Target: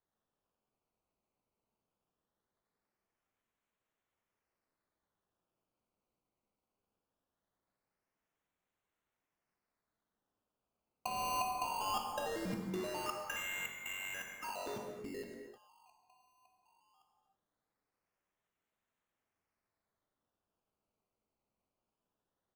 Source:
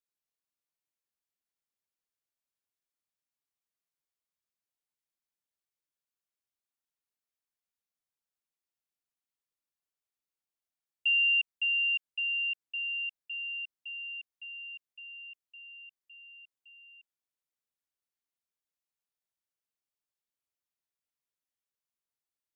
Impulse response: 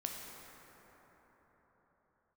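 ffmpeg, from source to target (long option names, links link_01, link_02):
-filter_complex "[0:a]afwtdn=0.00631,equalizer=frequency=2700:width=2.7:gain=-9,aecho=1:1:7.4:0.84,alimiter=level_in=16dB:limit=-24dB:level=0:latency=1:release=488,volume=-16dB,acrusher=samples=17:mix=1:aa=0.000001:lfo=1:lforange=17:lforate=0.2,asplit=2[link_01][link_02];[link_02]aeval=exprs='(mod(447*val(0)+1,2)-1)/447':channel_layout=same,volume=-5dB[link_03];[link_01][link_03]amix=inputs=2:normalize=0[link_04];[1:a]atrim=start_sample=2205,afade=type=out:start_time=0.39:duration=0.01,atrim=end_sample=17640[link_05];[link_04][link_05]afir=irnorm=-1:irlink=0,volume=13.5dB"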